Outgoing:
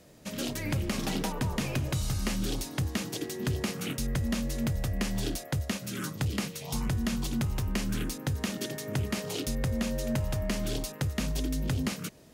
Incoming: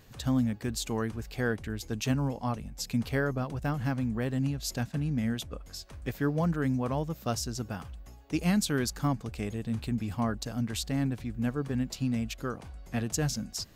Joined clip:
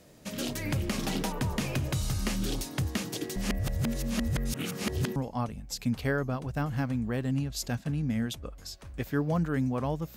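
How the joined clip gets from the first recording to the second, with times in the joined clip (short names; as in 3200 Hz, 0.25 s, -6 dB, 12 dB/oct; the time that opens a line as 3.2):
outgoing
3.36–5.16 reverse
5.16 switch to incoming from 2.24 s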